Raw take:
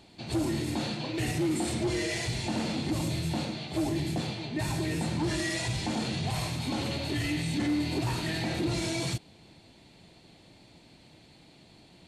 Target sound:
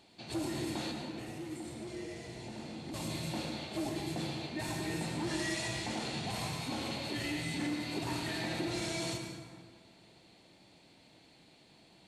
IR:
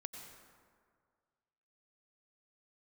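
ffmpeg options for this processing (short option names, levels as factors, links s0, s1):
-filter_complex "[0:a]lowshelf=f=180:g=-10,asettb=1/sr,asplit=3[s0][s1][s2];[s0]atrim=end=0.914[s3];[s1]atrim=start=0.91:end=2.94,asetpts=PTS-STARTPTS,afade=t=in:d=0.004:c=qsin,afade=t=out:st=2.026:d=0.004:c=qsin,acrossover=split=160|500|1200[s4][s5][s6][s7];[s4]acompressor=threshold=0.00398:ratio=4[s8];[s5]acompressor=threshold=0.00794:ratio=4[s9];[s6]acompressor=threshold=0.00224:ratio=4[s10];[s7]acompressor=threshold=0.00316:ratio=4[s11];[s8][s9][s10][s11]amix=inputs=4:normalize=0[s12];[s2]atrim=start=2.936[s13];[s3][s12]acrossfade=d=0.004:c1=hsin:c2=qsin[s14];[s14][s13]acrossfade=d=0.004:c1=qsin:c2=hsin[s15];[1:a]atrim=start_sample=2205[s16];[s15][s16]afir=irnorm=-1:irlink=0"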